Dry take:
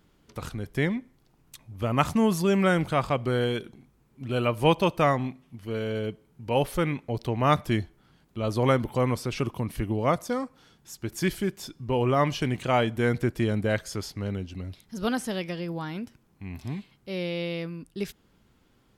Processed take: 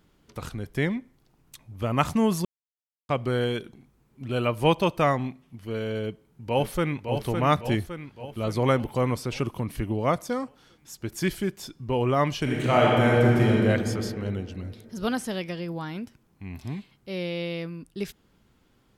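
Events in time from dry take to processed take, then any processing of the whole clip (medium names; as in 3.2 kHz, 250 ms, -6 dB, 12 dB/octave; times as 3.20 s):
2.45–3.09 s: mute
6.02–7.13 s: echo throw 560 ms, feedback 55%, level -6 dB
12.42–13.65 s: reverb throw, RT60 2.6 s, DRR -3.5 dB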